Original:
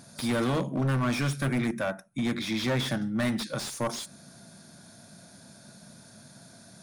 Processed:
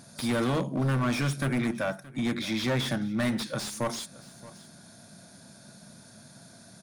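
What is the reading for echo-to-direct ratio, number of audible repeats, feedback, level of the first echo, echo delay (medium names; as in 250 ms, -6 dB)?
-19.5 dB, 1, no regular repeats, -19.5 dB, 623 ms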